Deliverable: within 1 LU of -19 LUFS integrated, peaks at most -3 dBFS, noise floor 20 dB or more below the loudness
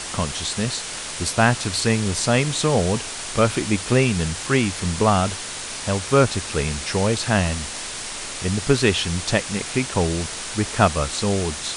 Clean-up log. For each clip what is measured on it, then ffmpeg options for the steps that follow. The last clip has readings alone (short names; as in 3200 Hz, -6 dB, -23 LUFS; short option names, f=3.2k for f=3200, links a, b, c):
noise floor -32 dBFS; noise floor target -42 dBFS; loudness -21.5 LUFS; peak -2.0 dBFS; loudness target -19.0 LUFS
-> -af "afftdn=nr=10:nf=-32"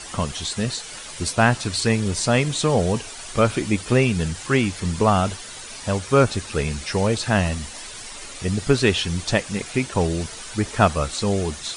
noise floor -37 dBFS; noise floor target -42 dBFS
-> -af "afftdn=nr=6:nf=-37"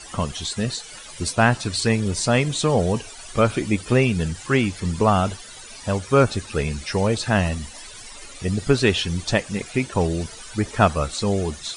noise floor -40 dBFS; noise floor target -42 dBFS
-> -af "afftdn=nr=6:nf=-40"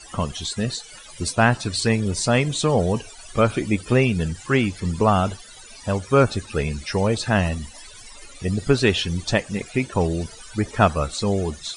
noise floor -43 dBFS; loudness -22.5 LUFS; peak -2.5 dBFS; loudness target -19.0 LUFS
-> -af "volume=3.5dB,alimiter=limit=-3dB:level=0:latency=1"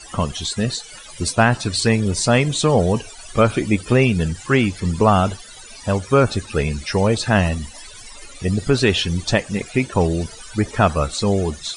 loudness -19.5 LUFS; peak -3.0 dBFS; noise floor -40 dBFS